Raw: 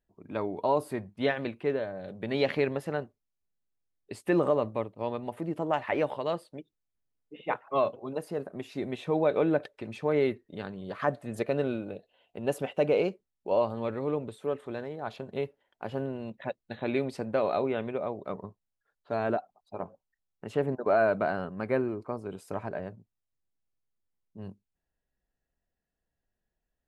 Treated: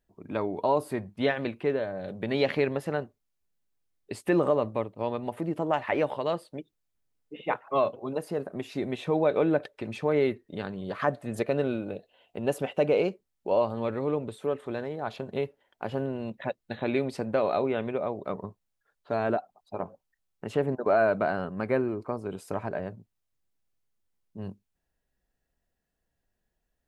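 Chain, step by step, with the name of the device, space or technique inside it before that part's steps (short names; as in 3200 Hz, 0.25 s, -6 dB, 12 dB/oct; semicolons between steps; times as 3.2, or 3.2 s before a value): parallel compression (in parallel at -3.5 dB: compressor, threshold -35 dBFS, peak gain reduction 14 dB)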